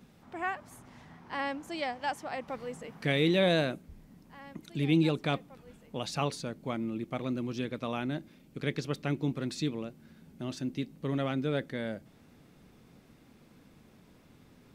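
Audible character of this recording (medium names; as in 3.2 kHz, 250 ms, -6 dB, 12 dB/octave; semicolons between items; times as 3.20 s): noise floor -60 dBFS; spectral tilt -5.0 dB/octave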